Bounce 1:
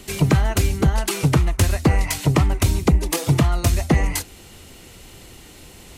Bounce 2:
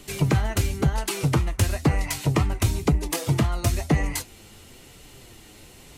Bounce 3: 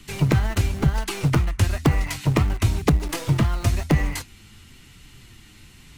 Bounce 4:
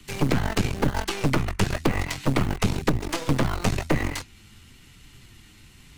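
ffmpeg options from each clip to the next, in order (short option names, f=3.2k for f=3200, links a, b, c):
-af "flanger=delay=6.7:depth=2.8:regen=59:speed=1:shape=sinusoidal"
-filter_complex "[0:a]highshelf=f=5.2k:g=-9,acrossover=split=300|1000[a][b][c];[b]acrusher=bits=4:dc=4:mix=0:aa=0.000001[d];[a][d][c]amix=inputs=3:normalize=0,volume=2.5dB"
-filter_complex "[0:a]aeval=exprs='0.631*(cos(1*acos(clip(val(0)/0.631,-1,1)))-cos(1*PI/2))+0.251*(cos(6*acos(clip(val(0)/0.631,-1,1)))-cos(6*PI/2))':c=same,acrossover=split=110|7300[a][b][c];[a]acompressor=threshold=-23dB:ratio=4[d];[b]acompressor=threshold=-17dB:ratio=4[e];[c]acompressor=threshold=-41dB:ratio=4[f];[d][e][f]amix=inputs=3:normalize=0,volume=-2.5dB"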